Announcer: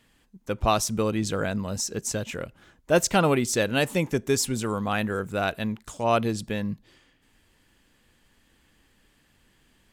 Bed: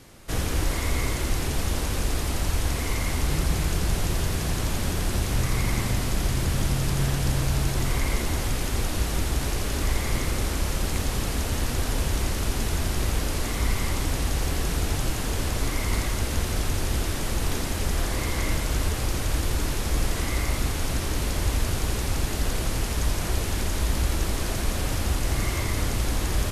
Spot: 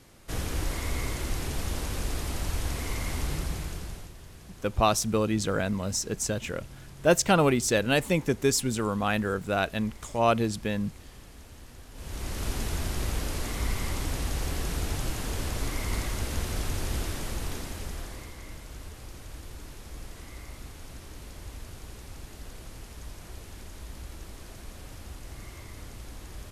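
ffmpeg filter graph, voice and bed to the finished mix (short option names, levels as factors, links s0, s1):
-filter_complex "[0:a]adelay=4150,volume=0.944[s0];[1:a]volume=3.76,afade=t=out:st=3.21:d=0.92:silence=0.149624,afade=t=in:st=11.93:d=0.55:silence=0.141254,afade=t=out:st=17:d=1.36:silence=0.237137[s1];[s0][s1]amix=inputs=2:normalize=0"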